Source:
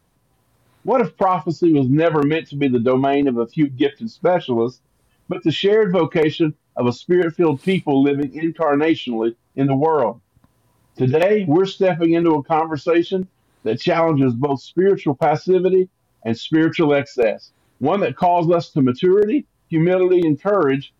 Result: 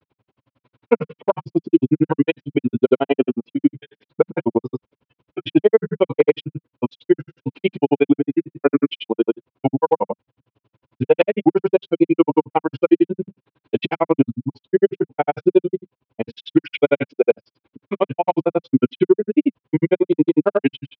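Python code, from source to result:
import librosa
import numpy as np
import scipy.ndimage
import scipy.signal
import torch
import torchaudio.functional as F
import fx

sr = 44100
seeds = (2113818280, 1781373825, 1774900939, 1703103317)

y = fx.granulator(x, sr, seeds[0], grain_ms=47.0, per_s=11.0, spray_ms=100.0, spread_st=0)
y = fx.cabinet(y, sr, low_hz=140.0, low_slope=12, high_hz=3100.0, hz=(180.0, 710.0, 1200.0, 1800.0), db=(-9, -8, -6, -9))
y = y * librosa.db_to_amplitude(7.0)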